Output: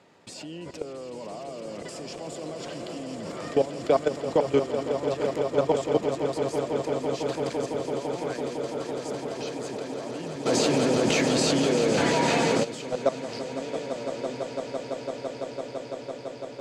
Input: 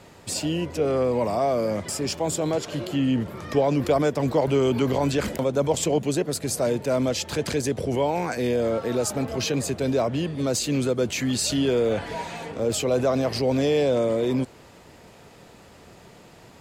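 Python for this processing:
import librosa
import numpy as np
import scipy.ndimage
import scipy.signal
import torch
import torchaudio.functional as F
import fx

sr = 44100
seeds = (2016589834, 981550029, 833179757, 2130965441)

y = scipy.signal.sosfilt(scipy.signal.butter(2, 180.0, 'highpass', fs=sr, output='sos'), x)
y = fx.level_steps(y, sr, step_db=20)
y = fx.air_absorb(y, sr, metres=65.0)
y = fx.echo_swell(y, sr, ms=168, loudest=8, wet_db=-11)
y = fx.env_flatten(y, sr, amount_pct=70, at=(10.45, 12.63), fade=0.02)
y = F.gain(torch.from_numpy(y), 2.0).numpy()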